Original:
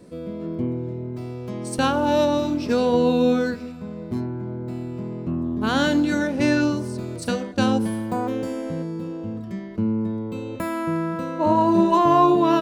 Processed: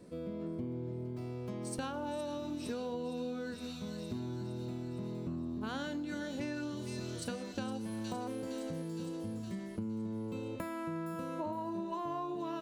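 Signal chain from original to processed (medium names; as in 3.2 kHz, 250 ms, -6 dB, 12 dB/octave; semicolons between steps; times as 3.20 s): feedback echo behind a high-pass 463 ms, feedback 60%, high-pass 4.1 kHz, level -3 dB; compression 10:1, threshold -28 dBFS, peak gain reduction 16.5 dB; trim -7.5 dB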